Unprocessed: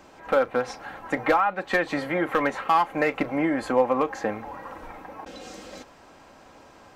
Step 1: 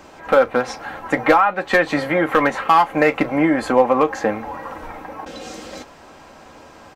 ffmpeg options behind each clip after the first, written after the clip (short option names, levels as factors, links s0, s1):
-filter_complex "[0:a]asplit=2[s0][s1];[s1]adelay=13,volume=0.266[s2];[s0][s2]amix=inputs=2:normalize=0,volume=2.24"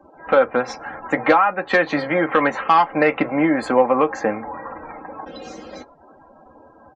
-filter_complex "[0:a]afftdn=nr=35:nf=-39,acrossover=split=110|1800[s0][s1][s2];[s0]acompressor=threshold=0.00251:ratio=6[s3];[s3][s1][s2]amix=inputs=3:normalize=0,volume=0.891"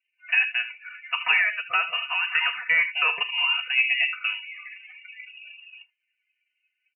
-af "aecho=1:1:42|77:0.188|0.266,afftdn=nr=24:nf=-29,lowpass=f=2600:t=q:w=0.5098,lowpass=f=2600:t=q:w=0.6013,lowpass=f=2600:t=q:w=0.9,lowpass=f=2600:t=q:w=2.563,afreqshift=-3100,volume=0.447"